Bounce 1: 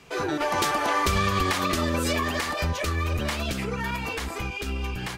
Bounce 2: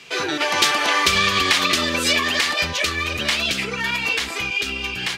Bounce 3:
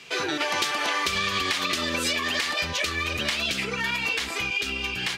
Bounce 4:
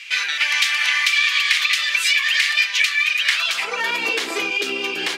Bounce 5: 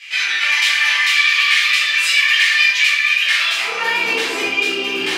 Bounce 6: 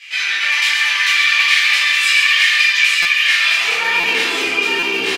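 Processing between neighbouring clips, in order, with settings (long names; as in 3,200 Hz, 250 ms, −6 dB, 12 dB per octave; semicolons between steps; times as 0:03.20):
meter weighting curve D; level +2 dB
downward compressor, threshold −20 dBFS, peak gain reduction 8 dB; level −2.5 dB
high-pass filter sweep 2,100 Hz → 360 Hz, 0:03.23–0:04.00; level +4.5 dB
rectangular room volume 280 cubic metres, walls mixed, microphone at 4 metres; level −7.5 dB
multi-tap delay 131/862 ms −6/−4 dB; buffer that repeats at 0:03.02/0:04.00/0:04.79, samples 256, times 5; level −1 dB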